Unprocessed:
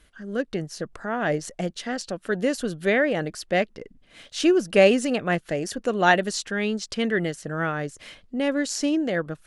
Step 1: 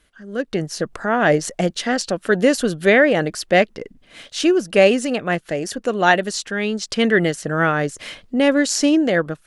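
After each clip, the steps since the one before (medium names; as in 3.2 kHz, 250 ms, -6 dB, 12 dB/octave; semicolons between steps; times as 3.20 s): bass shelf 130 Hz -5 dB; level rider gain up to 11.5 dB; trim -1 dB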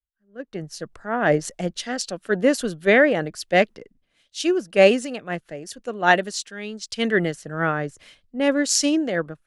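three bands expanded up and down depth 100%; trim -5 dB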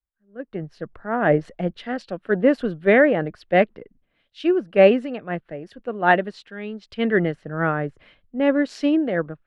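distance through air 460 m; trim +2.5 dB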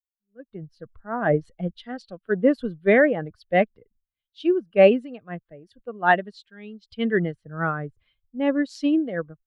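expander on every frequency bin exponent 1.5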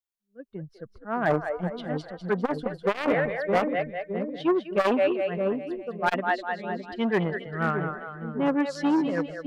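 two-band feedback delay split 470 Hz, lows 613 ms, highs 201 ms, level -7.5 dB; overload inside the chain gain 13 dB; transformer saturation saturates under 510 Hz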